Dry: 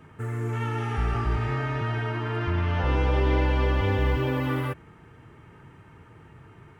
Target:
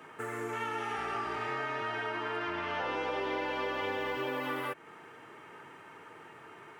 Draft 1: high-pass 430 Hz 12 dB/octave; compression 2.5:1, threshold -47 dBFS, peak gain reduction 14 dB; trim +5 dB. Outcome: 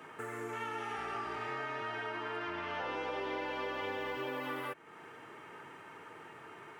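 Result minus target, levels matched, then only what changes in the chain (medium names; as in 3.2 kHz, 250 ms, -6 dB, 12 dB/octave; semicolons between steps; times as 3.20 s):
compression: peak gain reduction +4 dB
change: compression 2.5:1, threshold -40.5 dBFS, peak gain reduction 10 dB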